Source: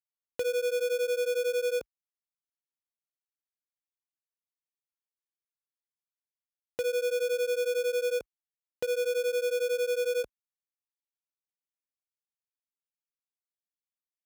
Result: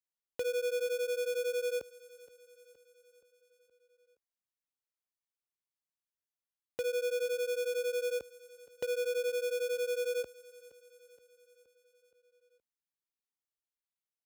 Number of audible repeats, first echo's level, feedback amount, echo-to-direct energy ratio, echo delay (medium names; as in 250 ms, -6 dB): 4, -18.0 dB, 58%, -16.0 dB, 471 ms